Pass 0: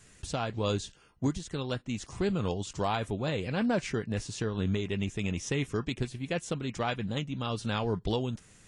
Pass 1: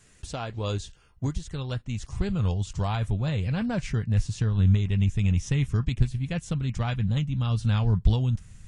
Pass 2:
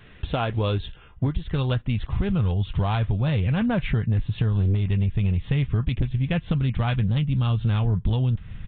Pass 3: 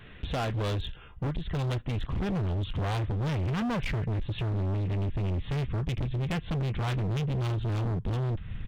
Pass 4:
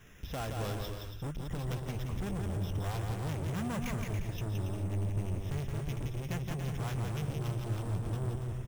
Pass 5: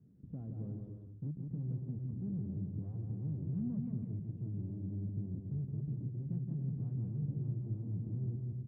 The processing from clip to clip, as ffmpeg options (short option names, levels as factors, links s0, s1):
-af "asubboost=boost=11.5:cutoff=110,volume=0.891"
-af "aresample=8000,aeval=exprs='0.422*sin(PI/2*2.24*val(0)/0.422)':c=same,aresample=44100,acompressor=threshold=0.1:ratio=6"
-af "volume=23.7,asoftclip=hard,volume=0.0422"
-af "acrusher=samples=5:mix=1:aa=0.000001,aecho=1:1:170|280.5|352.3|399|429.4:0.631|0.398|0.251|0.158|0.1,volume=0.422"
-af "asuperpass=centerf=180:order=4:qfactor=1.1"